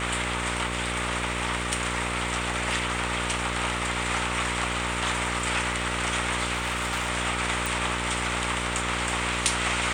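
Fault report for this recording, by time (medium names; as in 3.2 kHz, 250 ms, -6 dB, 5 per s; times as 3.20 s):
buzz 60 Hz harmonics 10 -33 dBFS
6.53–7.10 s: clipped -23.5 dBFS
7.66 s: pop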